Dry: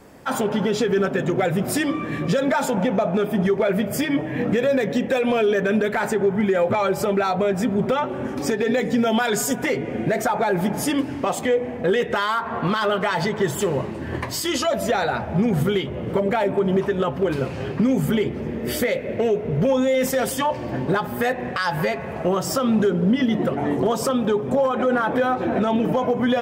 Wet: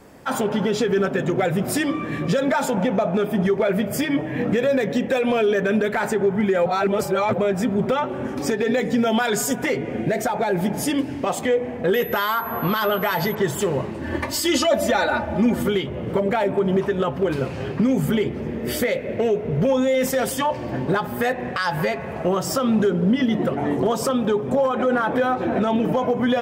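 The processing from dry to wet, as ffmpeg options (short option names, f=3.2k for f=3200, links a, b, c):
-filter_complex "[0:a]asettb=1/sr,asplit=3[a][b][c];[a]atrim=end=10.014[d];[b]atrim=start=10.01:end=11.27,asetpts=PTS-STARTPTS,afade=t=in:d=0.004:c=qsin,afade=t=out:st=1.256:d=0.004:c=qsin,equalizer=f=1.2k:t=o:w=0.77:g=-5.5[e];[c]atrim=start=11.266[f];[d][e]acrossfade=d=0.004:c1=hsin:c2=qsin[g];[g][f]acrossfade=d=0.004:c1=qsin:c2=hsin,asettb=1/sr,asplit=3[h][i][j];[h]atrim=end=11.944[k];[i]atrim=start=11.94:end=13.35,asetpts=PTS-STARTPTS,afade=t=in:d=0.004:c=qsin,afade=t=out:st=1.406:d=0.004:c=qsin,aeval=exprs='val(0)+0.02*sin(2*PI*12000*n/s)':c=same[l];[j]atrim=start=13.346[m];[k][l]acrossfade=d=0.004:c1=hsin:c2=qsin[n];[n][m]acrossfade=d=0.004:c1=qsin:c2=hsin,asettb=1/sr,asplit=3[o][p][q];[o]atrim=end=14.034[r];[p]atrim=start=14.03:end=15.68,asetpts=PTS-STARTPTS,afade=t=in:d=0.004:c=qsin,afade=t=out:st=1.646:d=0.004:c=qsin,aecho=1:1:3.4:0.87,atrim=end_sample=72765[s];[q]atrim=start=15.676[t];[r][s]acrossfade=d=0.004:c1=hsin:c2=qsin[u];[u][t]acrossfade=d=0.004:c1=qsin:c2=hsin,asplit=3[v][w][x];[v]atrim=end=6.662[y];[w]atrim=start=6.658:end=7.382,asetpts=PTS-STARTPTS,areverse[z];[x]atrim=start=7.378[aa];[y][z]acrossfade=d=0.004:c1=hsin:c2=hsin[ab];[ab][aa]acrossfade=d=0.004:c1=hsin:c2=hsin"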